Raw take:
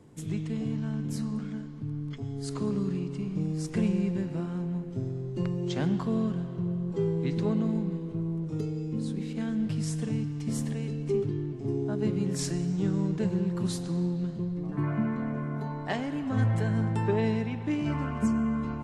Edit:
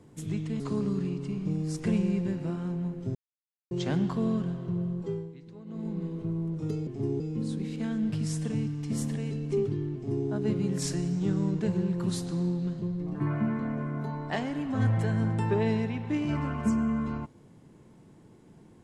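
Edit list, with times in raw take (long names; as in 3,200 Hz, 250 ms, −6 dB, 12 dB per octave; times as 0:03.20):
0:00.60–0:02.50: remove
0:05.05–0:05.61: silence
0:06.79–0:08.01: duck −19.5 dB, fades 0.46 s
0:11.52–0:11.85: duplicate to 0:08.77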